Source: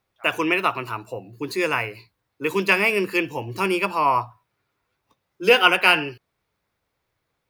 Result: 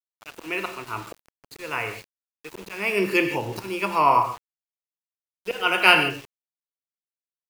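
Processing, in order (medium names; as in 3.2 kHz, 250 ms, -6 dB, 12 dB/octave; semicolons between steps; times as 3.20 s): slow attack 393 ms; gated-style reverb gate 180 ms flat, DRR 6 dB; small samples zeroed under -39.5 dBFS; trim +1 dB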